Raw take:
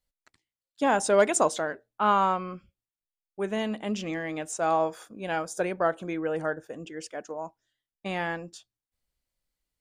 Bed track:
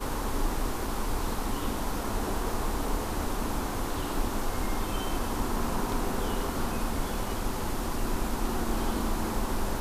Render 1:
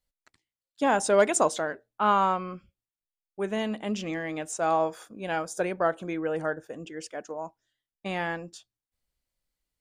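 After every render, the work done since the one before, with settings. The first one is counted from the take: no audible change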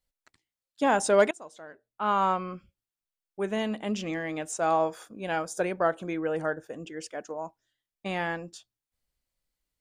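1.31–2.30 s: fade in quadratic, from -24 dB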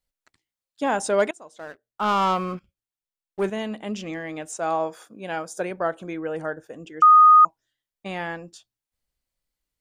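1.59–3.50 s: waveshaping leveller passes 2; 4.56–5.71 s: high-pass 110 Hz; 7.02–7.45 s: bleep 1.24 kHz -8.5 dBFS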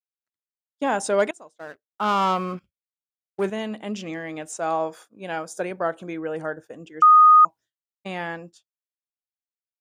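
expander -38 dBFS; high-pass 70 Hz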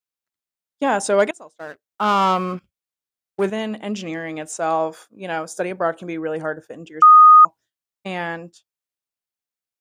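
trim +4 dB

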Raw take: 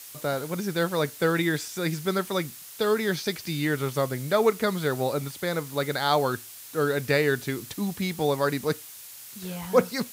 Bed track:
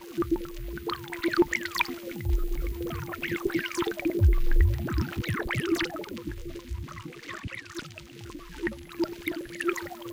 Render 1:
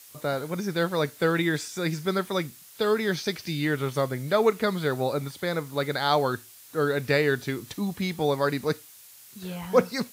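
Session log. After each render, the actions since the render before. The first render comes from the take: noise print and reduce 6 dB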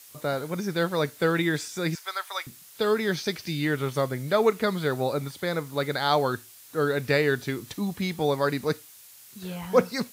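1.95–2.47 s: high-pass 760 Hz 24 dB/octave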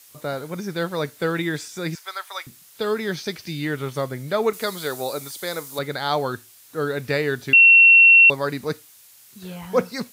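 4.53–5.79 s: tone controls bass -10 dB, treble +11 dB; 7.53–8.30 s: bleep 2.72 kHz -7.5 dBFS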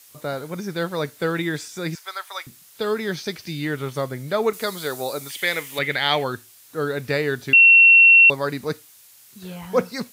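5.29–6.24 s: high-order bell 2.4 kHz +14.5 dB 1.1 oct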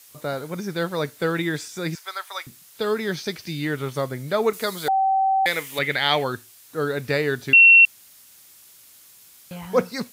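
4.88–5.46 s: bleep 771 Hz -16.5 dBFS; 7.85–9.51 s: room tone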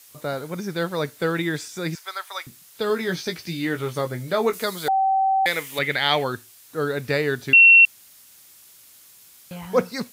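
2.88–4.64 s: doubling 17 ms -7 dB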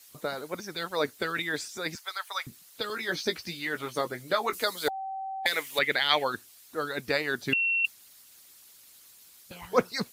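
peaking EQ 4.2 kHz +3 dB 0.35 oct; harmonic-percussive split harmonic -16 dB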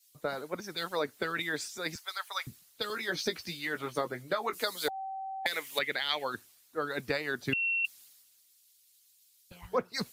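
compression 12:1, threshold -28 dBFS, peak gain reduction 12.5 dB; three bands expanded up and down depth 70%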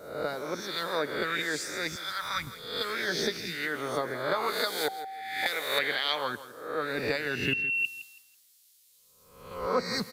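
reverse spectral sustain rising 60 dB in 0.75 s; feedback delay 164 ms, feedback 24%, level -15 dB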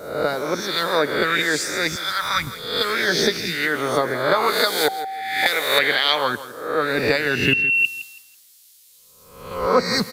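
trim +10.5 dB; peak limiter -2 dBFS, peak gain reduction 1 dB

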